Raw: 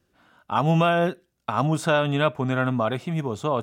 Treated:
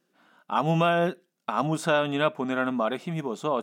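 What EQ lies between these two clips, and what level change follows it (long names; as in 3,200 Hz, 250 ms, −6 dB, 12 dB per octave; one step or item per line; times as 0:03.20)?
linear-phase brick-wall high-pass 150 Hz
−2.0 dB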